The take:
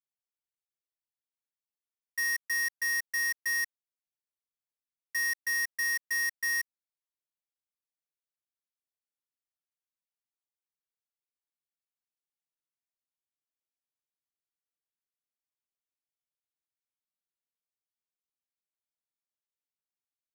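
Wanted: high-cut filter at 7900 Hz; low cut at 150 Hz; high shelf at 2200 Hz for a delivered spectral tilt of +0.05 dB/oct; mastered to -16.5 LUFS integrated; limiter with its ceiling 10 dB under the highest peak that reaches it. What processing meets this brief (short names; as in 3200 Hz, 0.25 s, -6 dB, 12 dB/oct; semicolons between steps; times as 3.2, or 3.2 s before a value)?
HPF 150 Hz; LPF 7900 Hz; high shelf 2200 Hz -6 dB; gain +26 dB; limiter -14 dBFS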